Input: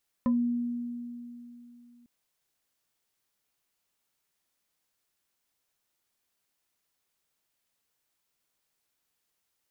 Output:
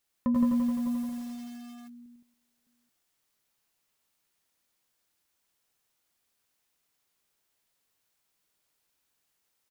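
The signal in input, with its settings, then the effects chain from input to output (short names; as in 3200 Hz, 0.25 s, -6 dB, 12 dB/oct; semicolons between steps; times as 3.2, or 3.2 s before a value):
FM tone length 1.80 s, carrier 240 Hz, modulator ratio 3.22, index 0.61, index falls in 0.16 s exponential, decay 3.12 s, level -21 dB
on a send: tapped delay 99/145/166/278/608/831 ms -5/-14.5/-4.5/-19/-13.5/-19.5 dB; on the sum: lo-fi delay 86 ms, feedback 80%, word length 8-bit, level -5 dB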